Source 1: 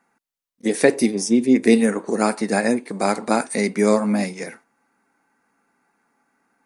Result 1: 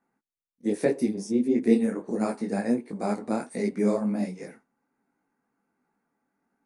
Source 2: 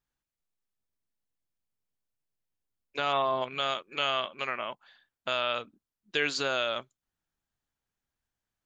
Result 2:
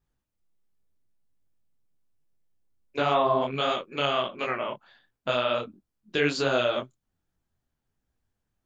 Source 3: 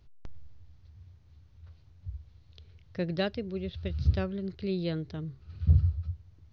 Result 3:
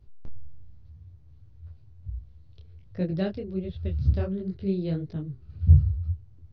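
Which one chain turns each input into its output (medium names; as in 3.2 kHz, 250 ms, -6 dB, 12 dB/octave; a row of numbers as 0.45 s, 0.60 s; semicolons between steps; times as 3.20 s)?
tilt shelf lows +6 dB, about 700 Hz; detune thickener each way 47 cents; normalise loudness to -27 LUFS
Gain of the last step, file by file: -6.5 dB, +9.5 dB, +2.5 dB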